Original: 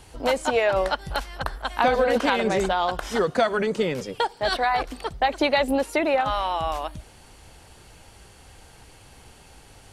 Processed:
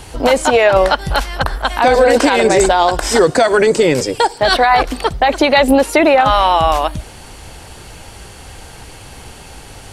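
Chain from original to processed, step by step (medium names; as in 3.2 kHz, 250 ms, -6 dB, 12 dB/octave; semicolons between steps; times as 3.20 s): 1.82–4.38 s: graphic EQ with 31 bands 200 Hz -11 dB, 315 Hz +5 dB, 1.25 kHz -5 dB, 3.15 kHz -4 dB, 5 kHz +5 dB, 8 kHz +11 dB; loudness maximiser +15 dB; trim -1 dB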